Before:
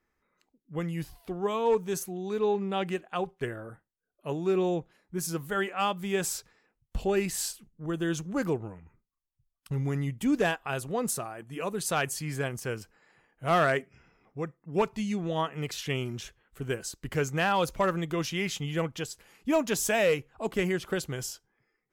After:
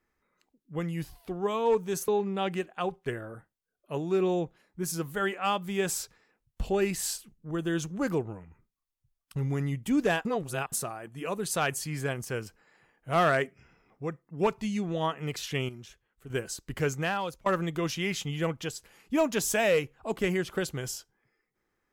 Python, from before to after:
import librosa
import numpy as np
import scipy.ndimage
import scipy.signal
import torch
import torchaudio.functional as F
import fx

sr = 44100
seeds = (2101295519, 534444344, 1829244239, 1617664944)

y = fx.edit(x, sr, fx.cut(start_s=2.08, length_s=0.35),
    fx.reverse_span(start_s=10.6, length_s=0.47),
    fx.clip_gain(start_s=16.04, length_s=0.61, db=-9.0),
    fx.fade_out_to(start_s=17.26, length_s=0.55, floor_db=-23.0), tone=tone)